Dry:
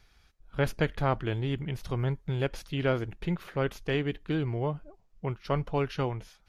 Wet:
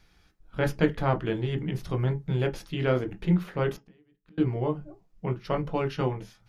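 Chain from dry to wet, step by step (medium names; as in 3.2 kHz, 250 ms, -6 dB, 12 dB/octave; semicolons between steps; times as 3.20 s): 3.76–4.38 s: inverted gate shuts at -35 dBFS, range -37 dB; on a send: reverberation RT60 0.15 s, pre-delay 13 ms, DRR 5 dB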